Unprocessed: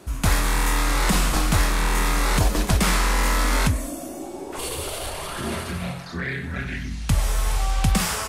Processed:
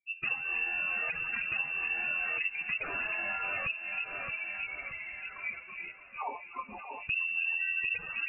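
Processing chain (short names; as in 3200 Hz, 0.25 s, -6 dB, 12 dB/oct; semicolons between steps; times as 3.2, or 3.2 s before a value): per-bin expansion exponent 3; echo with dull and thin repeats by turns 0.312 s, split 910 Hz, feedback 67%, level -9 dB; compressor 6:1, threshold -37 dBFS, peak gain reduction 17.5 dB; inverted band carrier 2700 Hz; 6.64–7.55 sustainer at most 30 dB/s; gain +4 dB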